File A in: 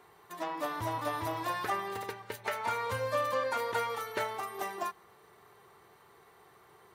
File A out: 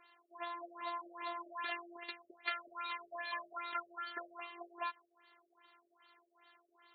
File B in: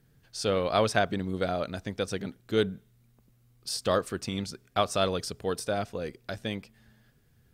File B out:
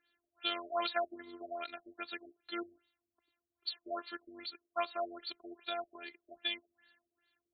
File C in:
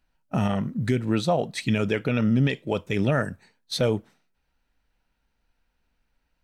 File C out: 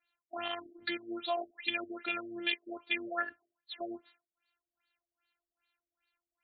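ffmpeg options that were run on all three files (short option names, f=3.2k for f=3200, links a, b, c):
-af "afftfilt=real='hypot(re,im)*cos(PI*b)':imag='0':win_size=512:overlap=0.75,aderivative,afftfilt=real='re*lt(b*sr/1024,620*pow(4600/620,0.5+0.5*sin(2*PI*2.5*pts/sr)))':imag='im*lt(b*sr/1024,620*pow(4600/620,0.5+0.5*sin(2*PI*2.5*pts/sr)))':win_size=1024:overlap=0.75,volume=13.5dB"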